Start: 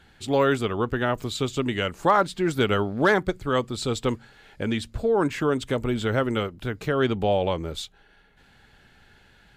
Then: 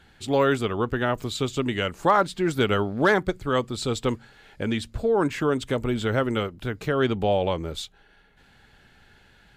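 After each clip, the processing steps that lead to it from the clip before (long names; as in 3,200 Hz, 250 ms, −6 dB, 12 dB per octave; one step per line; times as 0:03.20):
no processing that can be heard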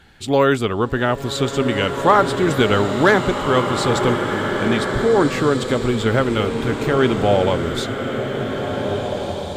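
slow-attack reverb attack 1,810 ms, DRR 3.5 dB
level +5.5 dB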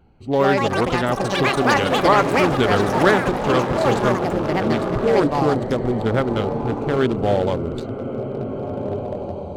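adaptive Wiener filter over 25 samples
delay with pitch and tempo change per echo 205 ms, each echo +6 semitones, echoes 3
level −2 dB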